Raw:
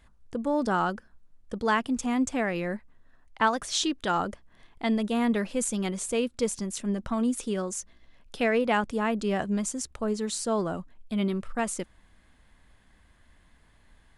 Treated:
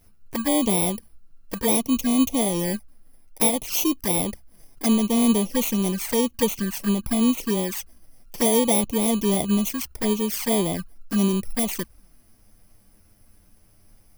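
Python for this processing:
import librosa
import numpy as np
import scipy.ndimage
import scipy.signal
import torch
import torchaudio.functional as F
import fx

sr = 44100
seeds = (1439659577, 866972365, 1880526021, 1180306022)

y = fx.bit_reversed(x, sr, seeds[0], block=32)
y = fx.env_flanger(y, sr, rest_ms=11.0, full_db=-25.5)
y = y * librosa.db_to_amplitude(7.5)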